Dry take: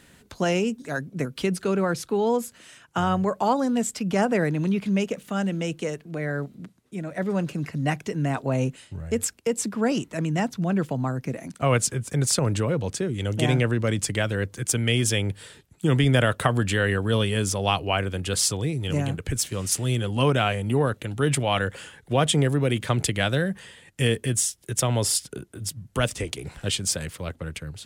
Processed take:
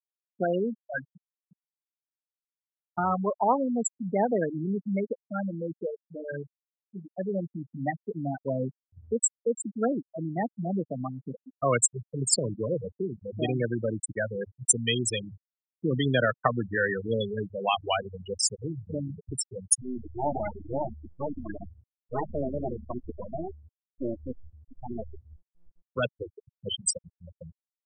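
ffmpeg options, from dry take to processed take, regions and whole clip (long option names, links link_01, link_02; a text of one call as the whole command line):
ffmpeg -i in.wav -filter_complex "[0:a]asettb=1/sr,asplit=3[link_01][link_02][link_03];[link_01]atrim=end=1.044[link_04];[link_02]atrim=start=1.04:end=2.98,asetpts=PTS-STARTPTS,afade=type=in:duration=0.004:curve=qsin,afade=type=out:start_time=1.936:duration=0.004:curve=qsin,lowpass=frequency=1300:width=0.5412,lowpass=frequency=1300:width=1.3066,acompressor=threshold=-36dB:ratio=6:attack=3.2:release=140:knee=1:detection=peak[link_05];[link_03]atrim=start=2.976[link_06];[link_04][link_05]acrossfade=duration=0.004:curve1=hsin:curve2=qsin[link_07];[link_07][link_06]acrossfade=duration=0.004:curve1=qsin:curve2=hsin,asettb=1/sr,asplit=3[link_08][link_09][link_10];[link_08]atrim=end=19.814[link_11];[link_09]atrim=start=19.81:end=25.82,asetpts=PTS-STARTPTS,afade=type=in:duration=0.004:curve=qsin,afade=type=out:start_time=6.006:duration=0.004:curve=qsin,aeval=exprs='abs(val(0))':channel_layout=same,asplit=6[link_12][link_13][link_14][link_15][link_16][link_17];[link_13]adelay=117,afreqshift=74,volume=-10dB[link_18];[link_14]adelay=234,afreqshift=148,volume=-16.6dB[link_19];[link_15]adelay=351,afreqshift=222,volume=-23.1dB[link_20];[link_16]adelay=468,afreqshift=296,volume=-29.7dB[link_21];[link_17]adelay=585,afreqshift=370,volume=-36.2dB[link_22];[link_12][link_18][link_19][link_20][link_21][link_22]amix=inputs=6:normalize=0,atrim=end_sample=265041[link_23];[link_10]atrim=start=25.816[link_24];[link_11][link_23]acrossfade=duration=0.004:curve1=hsin:curve2=qsin[link_25];[link_25][link_24]acrossfade=duration=0.004:curve1=qsin:curve2=hsin,bandreject=frequency=50:width_type=h:width=6,bandreject=frequency=100:width_type=h:width=6,bandreject=frequency=150:width_type=h:width=6,afftfilt=real='re*gte(hypot(re,im),0.2)':imag='im*gte(hypot(re,im),0.2)':win_size=1024:overlap=0.75,aemphasis=mode=production:type=bsi" out.wav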